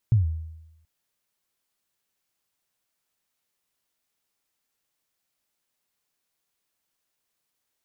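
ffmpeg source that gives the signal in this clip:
ffmpeg -f lavfi -i "aevalsrc='0.224*pow(10,-3*t/0.93)*sin(2*PI*(120*0.137/log(80/120)*(exp(log(80/120)*min(t,0.137)/0.137)-1)+80*max(t-0.137,0)))':duration=0.73:sample_rate=44100" out.wav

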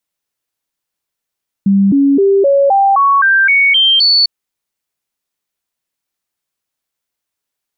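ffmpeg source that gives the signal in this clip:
ffmpeg -f lavfi -i "aevalsrc='0.473*clip(min(mod(t,0.26),0.26-mod(t,0.26))/0.005,0,1)*sin(2*PI*197*pow(2,floor(t/0.26)/2)*mod(t,0.26))':duration=2.6:sample_rate=44100" out.wav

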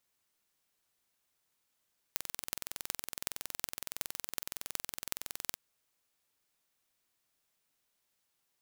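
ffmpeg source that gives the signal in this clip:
ffmpeg -f lavfi -i "aevalsrc='0.562*eq(mod(n,2042),0)*(0.5+0.5*eq(mod(n,16336),0))':duration=3.41:sample_rate=44100" out.wav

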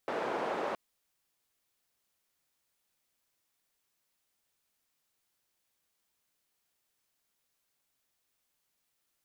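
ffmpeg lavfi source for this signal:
ffmpeg -f lavfi -i "anoisesrc=color=white:duration=0.67:sample_rate=44100:seed=1,highpass=frequency=380,lowpass=frequency=750,volume=-12.7dB" out.wav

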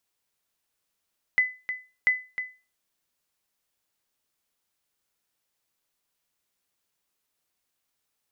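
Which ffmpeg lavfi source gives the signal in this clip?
ffmpeg -f lavfi -i "aevalsrc='0.211*(sin(2*PI*2010*mod(t,0.69))*exp(-6.91*mod(t,0.69)/0.31)+0.316*sin(2*PI*2010*max(mod(t,0.69)-0.31,0))*exp(-6.91*max(mod(t,0.69)-0.31,0)/0.31))':duration=1.38:sample_rate=44100" out.wav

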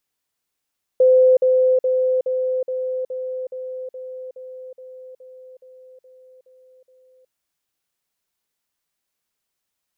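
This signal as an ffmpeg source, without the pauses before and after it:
ffmpeg -f lavfi -i "aevalsrc='pow(10,(-9.5-3*floor(t/0.42))/20)*sin(2*PI*513*t)*clip(min(mod(t,0.42),0.37-mod(t,0.42))/0.005,0,1)':duration=6.3:sample_rate=44100" out.wav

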